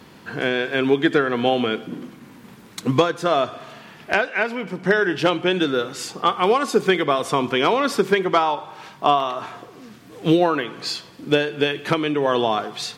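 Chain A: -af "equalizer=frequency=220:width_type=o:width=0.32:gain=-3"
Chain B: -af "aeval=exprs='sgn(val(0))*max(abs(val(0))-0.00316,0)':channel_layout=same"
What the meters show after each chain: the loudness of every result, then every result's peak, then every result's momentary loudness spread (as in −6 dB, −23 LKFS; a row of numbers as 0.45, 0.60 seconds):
−21.0, −21.0 LKFS; −5.0, −5.0 dBFS; 11, 11 LU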